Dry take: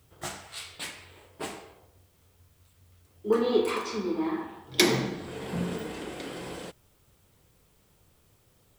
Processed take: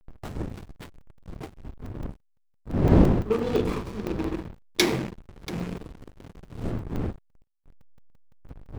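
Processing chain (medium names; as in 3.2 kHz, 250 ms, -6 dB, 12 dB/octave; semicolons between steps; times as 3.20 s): rattle on loud lows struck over -33 dBFS, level -26 dBFS; wind noise 300 Hz -29 dBFS; on a send: delay 685 ms -13.5 dB; on the sum: hysteresis with a dead band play -24.5 dBFS; crackling interface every 0.17 s, samples 128, zero, from 0.50 s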